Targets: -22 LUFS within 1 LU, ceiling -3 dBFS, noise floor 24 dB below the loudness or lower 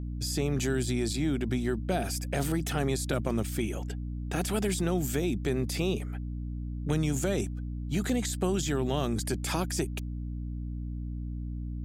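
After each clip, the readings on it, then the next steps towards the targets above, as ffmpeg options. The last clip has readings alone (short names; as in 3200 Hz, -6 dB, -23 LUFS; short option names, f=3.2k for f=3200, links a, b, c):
hum 60 Hz; harmonics up to 300 Hz; hum level -33 dBFS; loudness -31.0 LUFS; peak -14.5 dBFS; loudness target -22.0 LUFS
-> -af "bandreject=f=60:t=h:w=4,bandreject=f=120:t=h:w=4,bandreject=f=180:t=h:w=4,bandreject=f=240:t=h:w=4,bandreject=f=300:t=h:w=4"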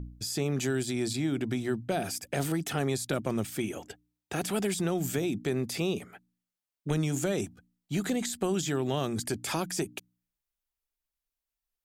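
hum none; loudness -31.5 LUFS; peak -15.0 dBFS; loudness target -22.0 LUFS
-> -af "volume=9.5dB"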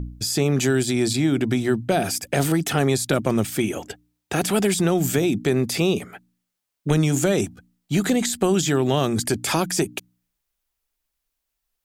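loudness -22.0 LUFS; peak -5.5 dBFS; noise floor -80 dBFS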